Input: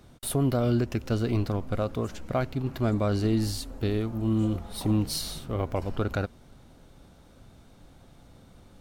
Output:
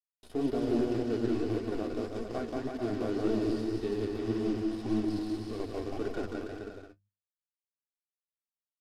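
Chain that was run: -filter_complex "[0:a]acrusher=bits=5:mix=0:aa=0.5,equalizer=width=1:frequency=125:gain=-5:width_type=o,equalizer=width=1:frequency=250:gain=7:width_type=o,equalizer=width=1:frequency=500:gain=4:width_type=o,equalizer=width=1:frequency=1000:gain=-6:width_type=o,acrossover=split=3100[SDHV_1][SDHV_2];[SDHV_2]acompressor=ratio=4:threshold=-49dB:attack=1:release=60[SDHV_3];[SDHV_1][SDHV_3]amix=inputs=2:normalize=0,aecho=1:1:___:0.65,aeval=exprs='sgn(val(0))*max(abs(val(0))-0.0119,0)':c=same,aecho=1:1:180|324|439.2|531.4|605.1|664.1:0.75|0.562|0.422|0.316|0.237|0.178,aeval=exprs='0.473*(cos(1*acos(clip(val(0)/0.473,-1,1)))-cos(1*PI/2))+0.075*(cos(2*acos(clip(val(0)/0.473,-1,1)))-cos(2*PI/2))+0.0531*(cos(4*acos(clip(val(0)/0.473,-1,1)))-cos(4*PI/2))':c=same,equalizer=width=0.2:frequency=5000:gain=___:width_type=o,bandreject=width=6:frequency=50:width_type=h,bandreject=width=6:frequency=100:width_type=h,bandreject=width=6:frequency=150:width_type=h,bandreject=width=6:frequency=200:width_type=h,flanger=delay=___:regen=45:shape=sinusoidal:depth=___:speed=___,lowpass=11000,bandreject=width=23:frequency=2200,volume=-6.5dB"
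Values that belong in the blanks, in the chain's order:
2.7, 8, 4.4, 9, 1.8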